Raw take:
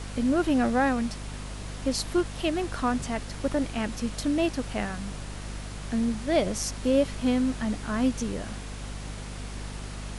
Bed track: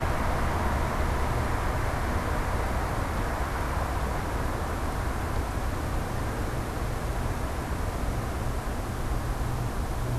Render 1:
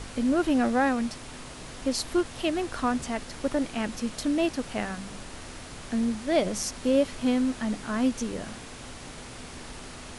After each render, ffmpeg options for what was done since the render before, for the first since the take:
-af "bandreject=f=50:t=h:w=4,bandreject=f=100:t=h:w=4,bandreject=f=150:t=h:w=4,bandreject=f=200:t=h:w=4"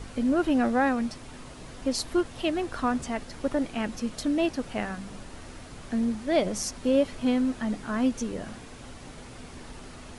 -af "afftdn=nr=6:nf=-43"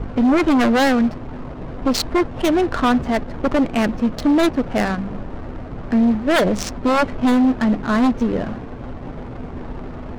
-af "adynamicsmooth=sensitivity=6.5:basefreq=650,aeval=exprs='0.266*sin(PI/2*3.16*val(0)/0.266)':c=same"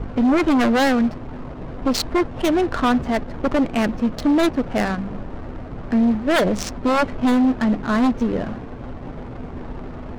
-af "volume=-1.5dB"

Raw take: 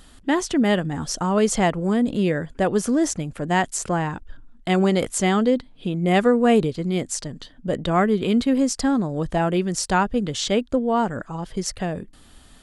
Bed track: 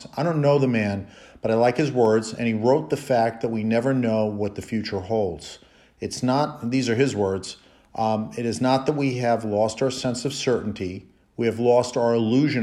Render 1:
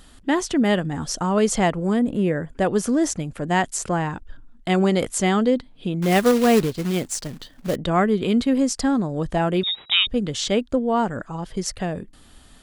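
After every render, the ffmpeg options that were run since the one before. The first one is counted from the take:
-filter_complex "[0:a]asettb=1/sr,asplit=3[a][b][c];[a]atrim=end=1.994[d];[b]atrim=start=1.99:end=2.53,asetpts=PTS-STARTPTS,afade=t=in:d=0.004:c=qsin,afade=t=out:st=0.536:d=0.004:c=qsin,equalizer=f=4.4k:t=o:w=1.1:g=-13.5[e];[c]atrim=start=2.526[f];[d][e]acrossfade=d=0.004:c1=hsin:c2=qsin[g];[g][f]acrossfade=d=0.004:c1=qsin:c2=hsin,asettb=1/sr,asplit=3[h][i][j];[h]atrim=end=6.024[k];[i]atrim=start=6.02:end=7.76,asetpts=PTS-STARTPTS,afade=t=in:d=0.004:c=qsin,afade=t=out:st=1.736:d=0.004:c=qsin,acrusher=bits=3:mode=log:mix=0:aa=0.000001[l];[j]atrim=start=7.756[m];[k][l]acrossfade=d=0.004:c1=hsin:c2=qsin[n];[n][m]acrossfade=d=0.004:c1=qsin:c2=hsin,asettb=1/sr,asplit=3[o][p][q];[o]atrim=end=9.634[r];[p]atrim=start=9.63:end=10.07,asetpts=PTS-STARTPTS,afade=t=in:d=0.004:c=qsin,afade=t=out:st=0.436:d=0.004:c=qsin,lowpass=f=3.3k:t=q:w=0.5098,lowpass=f=3.3k:t=q:w=0.6013,lowpass=f=3.3k:t=q:w=0.9,lowpass=f=3.3k:t=q:w=2.563,afreqshift=-3900[s];[q]atrim=start=10.066[t];[r][s]acrossfade=d=0.004:c1=hsin:c2=qsin[u];[u][t]acrossfade=d=0.004:c1=qsin:c2=hsin"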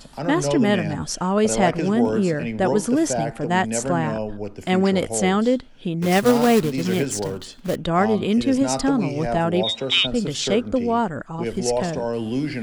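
-filter_complex "[1:a]volume=-5dB[a];[0:a][a]amix=inputs=2:normalize=0"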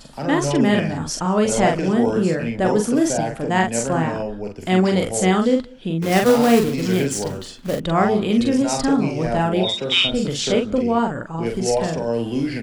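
-filter_complex "[0:a]asplit=2[a][b];[b]adelay=43,volume=-4dB[c];[a][c]amix=inputs=2:normalize=0,asplit=2[d][e];[e]adelay=186.6,volume=-26dB,highshelf=f=4k:g=-4.2[f];[d][f]amix=inputs=2:normalize=0"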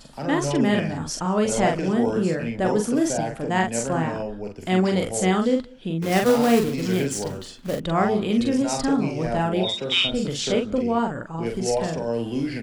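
-af "volume=-3.5dB"

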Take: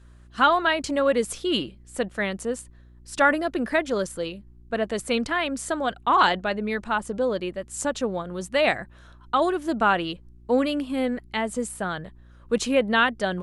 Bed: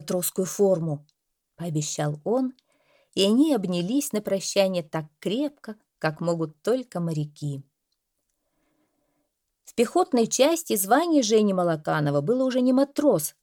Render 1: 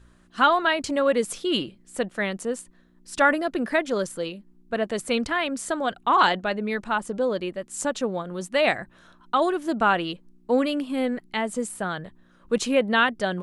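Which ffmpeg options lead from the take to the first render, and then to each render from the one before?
-af "bandreject=f=60:t=h:w=4,bandreject=f=120:t=h:w=4"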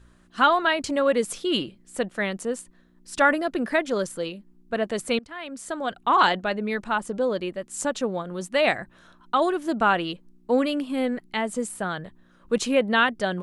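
-filter_complex "[0:a]asplit=2[a][b];[a]atrim=end=5.19,asetpts=PTS-STARTPTS,afade=t=out:st=5.186:d=0.004:c=hsin:silence=0.0707946[c];[b]atrim=start=5.19,asetpts=PTS-STARTPTS,afade=t=in:d=0.91:silence=0.0707946[d];[c][d]concat=n=2:v=0:a=1"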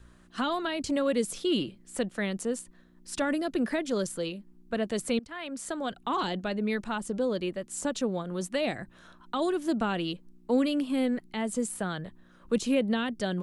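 -filter_complex "[0:a]acrossover=split=380|3000[a][b][c];[b]acompressor=threshold=-38dB:ratio=2[d];[a][d][c]amix=inputs=3:normalize=0,acrossover=split=850[e][f];[f]alimiter=level_in=1.5dB:limit=-24dB:level=0:latency=1:release=66,volume=-1.5dB[g];[e][g]amix=inputs=2:normalize=0"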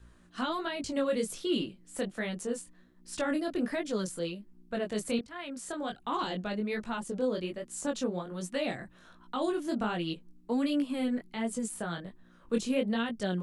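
-af "flanger=delay=17:depth=6.8:speed=1.3"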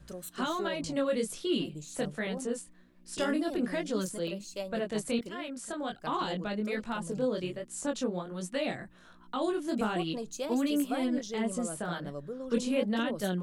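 -filter_complex "[1:a]volume=-17dB[a];[0:a][a]amix=inputs=2:normalize=0"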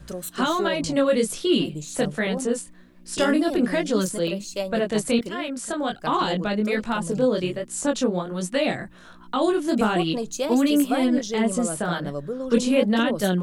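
-af "volume=9.5dB"

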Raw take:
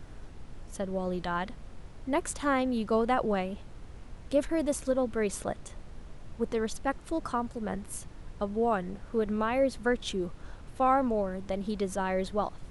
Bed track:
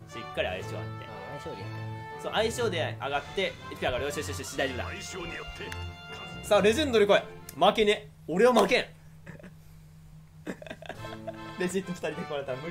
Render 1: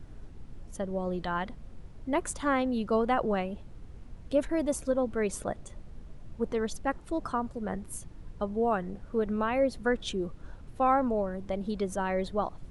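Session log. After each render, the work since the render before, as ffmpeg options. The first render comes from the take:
-af "afftdn=nr=7:nf=-48"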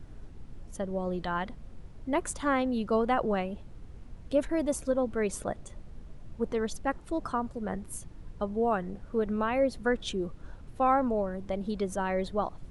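-af anull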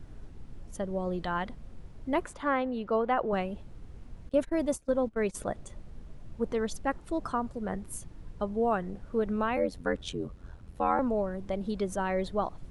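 -filter_complex "[0:a]asettb=1/sr,asplit=3[a][b][c];[a]atrim=end=2.254[d];[b]atrim=start=2.25:end=3.33,asetpts=PTS-STARTPTS,afade=t=in:d=0.004:c=qsin,afade=t=out:st=1.076:d=0.004:c=qsin,bass=f=250:g=-8,treble=f=4k:g=-14[e];[c]atrim=start=3.326[f];[d][e]acrossfade=d=0.004:c1=hsin:c2=qsin[g];[g][f]acrossfade=d=0.004:c1=qsin:c2=hsin,asettb=1/sr,asplit=3[h][i][j];[h]atrim=end=4.294[k];[i]atrim=start=4.29:end=5.35,asetpts=PTS-STARTPTS,afade=t=in:d=0.004:c=qsin,afade=t=out:st=1.056:d=0.004:c=qsin,agate=range=-20dB:threshold=-34dB:ratio=16:release=100:detection=peak[l];[j]atrim=start=5.346[m];[k][l]acrossfade=d=0.004:c1=hsin:c2=qsin[n];[n][m]acrossfade=d=0.004:c1=qsin:c2=hsin,asettb=1/sr,asplit=3[o][p][q];[o]atrim=end=9.564[r];[p]atrim=start=9.56:end=10.99,asetpts=PTS-STARTPTS,afade=t=in:d=0.004:c=qsin,afade=t=out:st=1.426:d=0.004:c=qsin,aeval=exprs='val(0)*sin(2*PI*44*n/s)':c=same[s];[q]atrim=start=10.986[t];[r][s]acrossfade=d=0.004:c1=hsin:c2=qsin[u];[u][t]acrossfade=d=0.004:c1=qsin:c2=hsin"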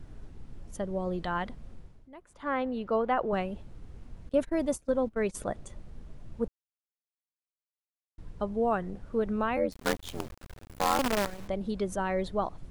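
-filter_complex "[0:a]asettb=1/sr,asplit=3[a][b][c];[a]atrim=end=9.724[d];[b]atrim=start=9.72:end=11.48,asetpts=PTS-STARTPTS,afade=t=in:d=0.004:c=qsin,afade=t=out:st=1.756:d=0.004:c=qsin,acrusher=bits=5:dc=4:mix=0:aa=0.000001[e];[c]atrim=start=11.476[f];[d][e]acrossfade=d=0.004:c1=hsin:c2=qsin[g];[g][f]acrossfade=d=0.004:c1=qsin:c2=hsin,asplit=5[h][i][j][k][l];[h]atrim=end=2.09,asetpts=PTS-STARTPTS,afade=t=out:st=1.72:d=0.37:silence=0.0891251[m];[i]atrim=start=2.09:end=2.26,asetpts=PTS-STARTPTS,volume=-21dB[n];[j]atrim=start=2.26:end=6.48,asetpts=PTS-STARTPTS,afade=t=in:d=0.37:silence=0.0891251,afade=t=out:st=4.216:d=0.004:c=hsin[o];[k]atrim=start=6.48:end=8.18,asetpts=PTS-STARTPTS,volume=0[p];[l]atrim=start=8.18,asetpts=PTS-STARTPTS,afade=t=in:d=0.004:c=hsin[q];[m][n][o][p][q]concat=n=5:v=0:a=1"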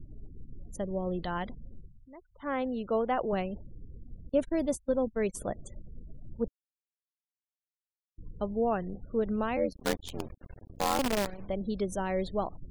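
-af "afftfilt=real='re*gte(hypot(re,im),0.00398)':imag='im*gte(hypot(re,im),0.00398)':win_size=1024:overlap=0.75,equalizer=f=1.3k:t=o:w=1.2:g=-5"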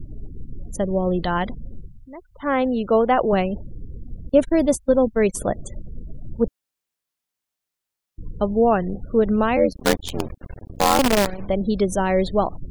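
-af "volume=11.5dB"

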